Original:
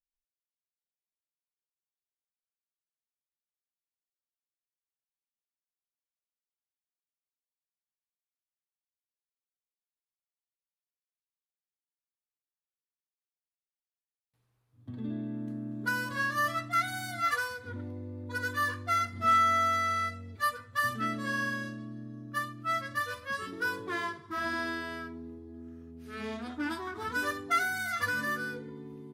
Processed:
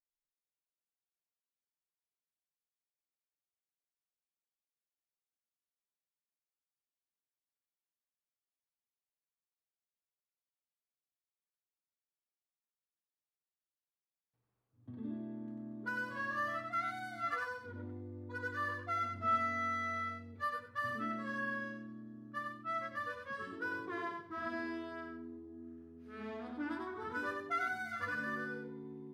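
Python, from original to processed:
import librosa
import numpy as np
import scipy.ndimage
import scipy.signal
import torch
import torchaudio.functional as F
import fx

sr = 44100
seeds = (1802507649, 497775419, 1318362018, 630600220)

y = fx.lowpass(x, sr, hz=1100.0, slope=6)
y = fx.low_shelf(y, sr, hz=120.0, db=-7.5)
y = fx.echo_feedback(y, sr, ms=94, feedback_pct=15, wet_db=-4.0)
y = y * librosa.db_to_amplitude(-4.5)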